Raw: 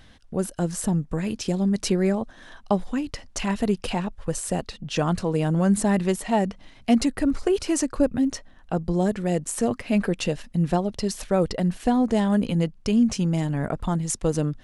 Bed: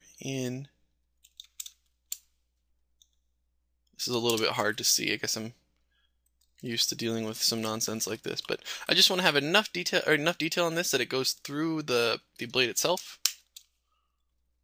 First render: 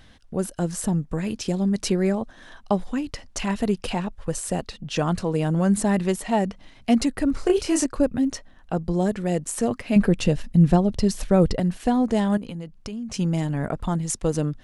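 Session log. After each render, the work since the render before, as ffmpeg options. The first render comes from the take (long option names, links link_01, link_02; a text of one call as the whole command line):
ffmpeg -i in.wav -filter_complex "[0:a]asettb=1/sr,asplit=3[link_01][link_02][link_03];[link_01]atrim=end=7.344[link_04];[link_02]atrim=start=7.34:end=7.86,asetpts=PTS-STARTPTS,afade=type=in:duration=0.004:curve=qsin,afade=type=out:start_time=0.516:duration=0.004:curve=qsin,asplit=2[link_05][link_06];[link_06]adelay=28,volume=-3.5dB[link_07];[link_05][link_07]amix=inputs=2:normalize=0,atrim=end_sample=22932[link_08];[link_03]atrim=start=7.856[link_09];[link_04][link_08]acrossfade=duration=0.004:curve1=hsin:curve2=qsin[link_10];[link_10][link_09]acrossfade=duration=0.004:curve1=qsin:curve2=hsin,asettb=1/sr,asplit=3[link_11][link_12][link_13];[link_11]atrim=end=9.964[link_14];[link_12]atrim=start=9.96:end=11.6,asetpts=PTS-STARTPTS,afade=type=in:duration=0.004:curve=qsin,afade=type=out:start_time=1.636:duration=0.004:curve=qsin,lowshelf=frequency=250:gain=10.5[link_15];[link_13]atrim=start=11.596[link_16];[link_14][link_15]acrossfade=duration=0.004:curve1=hsin:curve2=qsin[link_17];[link_17][link_16]acrossfade=duration=0.004:curve1=qsin:curve2=hsin,asettb=1/sr,asplit=3[link_18][link_19][link_20];[link_18]atrim=end=12.374[link_21];[link_19]atrim=start=12.37:end=13.14,asetpts=PTS-STARTPTS,afade=type=in:duration=0.004:curve=qsin,afade=type=out:start_time=0.766:duration=0.004:curve=qsin,acompressor=threshold=-31dB:ratio=5:attack=3.2:release=140:knee=1:detection=peak[link_22];[link_20]atrim=start=13.136[link_23];[link_21][link_22]acrossfade=duration=0.004:curve1=hsin:curve2=qsin[link_24];[link_24][link_23]acrossfade=duration=0.004:curve1=qsin:curve2=hsin" out.wav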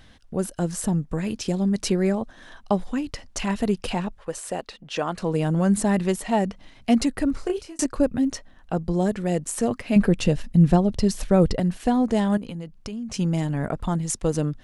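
ffmpeg -i in.wav -filter_complex "[0:a]asettb=1/sr,asplit=3[link_01][link_02][link_03];[link_01]atrim=end=4.174[link_04];[link_02]atrim=start=4.17:end=5.22,asetpts=PTS-STARTPTS,afade=type=in:duration=0.004:curve=qsin,afade=type=out:start_time=1.046:duration=0.004:curve=qsin,bass=frequency=250:gain=-14,treble=frequency=4000:gain=-5[link_05];[link_03]atrim=start=5.216[link_06];[link_04][link_05]acrossfade=duration=0.004:curve1=hsin:curve2=qsin[link_07];[link_07][link_06]acrossfade=duration=0.004:curve1=qsin:curve2=hsin,asplit=2[link_08][link_09];[link_08]atrim=end=7.79,asetpts=PTS-STARTPTS,afade=type=out:start_time=7.22:duration=0.57[link_10];[link_09]atrim=start=7.79,asetpts=PTS-STARTPTS,afade=type=in:duration=0.004:curve=hsin[link_11];[link_10][link_11]concat=n=2:v=0:a=1" out.wav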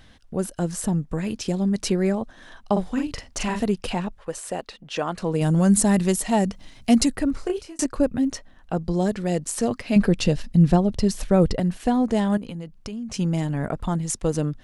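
ffmpeg -i in.wav -filter_complex "[0:a]asettb=1/sr,asplit=3[link_01][link_02][link_03];[link_01]atrim=end=2.724[link_04];[link_02]atrim=start=2.72:end=3.63,asetpts=PTS-STARTPTS,afade=type=in:duration=0.004:curve=qsin,afade=type=out:start_time=0.906:duration=0.004:curve=qsin,asplit=2[link_05][link_06];[link_06]adelay=43,volume=-4dB[link_07];[link_05][link_07]amix=inputs=2:normalize=0,atrim=end_sample=40131[link_08];[link_03]atrim=start=3.626[link_09];[link_04][link_08]acrossfade=duration=0.004:curve1=hsin:curve2=qsin[link_10];[link_10][link_09]acrossfade=duration=0.004:curve1=qsin:curve2=hsin,asettb=1/sr,asplit=3[link_11][link_12][link_13];[link_11]atrim=end=5.414[link_14];[link_12]atrim=start=5.41:end=7.16,asetpts=PTS-STARTPTS,afade=type=in:duration=0.004:curve=qsin,afade=type=out:start_time=1.746:duration=0.004:curve=qsin,bass=frequency=250:gain=4,treble=frequency=4000:gain=9[link_15];[link_13]atrim=start=7.156[link_16];[link_14][link_15]acrossfade=duration=0.004:curve1=hsin:curve2=qsin[link_17];[link_17][link_16]acrossfade=duration=0.004:curve1=qsin:curve2=hsin,asettb=1/sr,asplit=3[link_18][link_19][link_20];[link_18]atrim=end=8.804[link_21];[link_19]atrim=start=8.8:end=10.72,asetpts=PTS-STARTPTS,afade=type=in:duration=0.004:curve=qsin,afade=type=out:start_time=1.916:duration=0.004:curve=qsin,equalizer=frequency=4700:width_type=o:width=0.77:gain=5.5[link_22];[link_20]atrim=start=10.716[link_23];[link_21][link_22]acrossfade=duration=0.004:curve1=hsin:curve2=qsin[link_24];[link_24][link_23]acrossfade=duration=0.004:curve1=qsin:curve2=hsin" out.wav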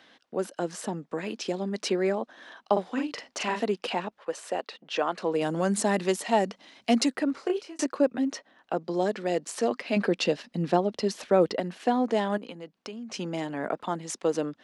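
ffmpeg -i in.wav -filter_complex "[0:a]highpass=190,acrossover=split=250 5800:gain=0.141 1 0.2[link_01][link_02][link_03];[link_01][link_02][link_03]amix=inputs=3:normalize=0" out.wav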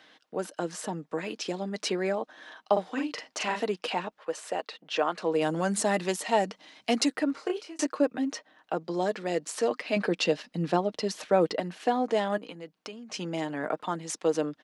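ffmpeg -i in.wav -af "lowshelf=frequency=350:gain=-4,aecho=1:1:6.5:0.33" out.wav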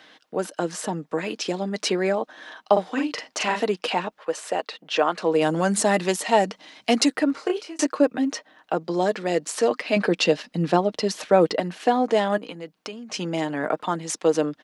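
ffmpeg -i in.wav -af "volume=6dB" out.wav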